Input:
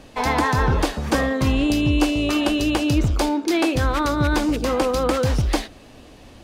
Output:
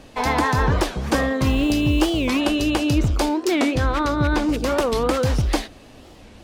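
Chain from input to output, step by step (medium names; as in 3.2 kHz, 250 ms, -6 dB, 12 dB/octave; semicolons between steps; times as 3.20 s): 1.45–2.39 s: modulation noise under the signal 32 dB; 3.70–4.48 s: treble shelf 10 kHz -> 6.5 kHz -11.5 dB; warped record 45 rpm, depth 250 cents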